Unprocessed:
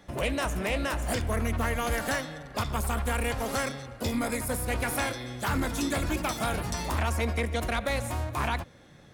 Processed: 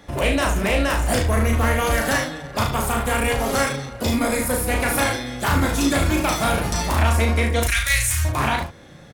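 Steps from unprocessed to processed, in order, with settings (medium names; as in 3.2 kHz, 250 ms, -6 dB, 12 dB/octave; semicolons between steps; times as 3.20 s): 7.63–8.25 s: FFT filter 110 Hz 0 dB, 180 Hz -25 dB, 830 Hz -20 dB, 1.8 kHz +5 dB, 4.1 kHz +3 dB, 5.8 kHz +11 dB; early reflections 36 ms -3.5 dB, 74 ms -8.5 dB; trim +7 dB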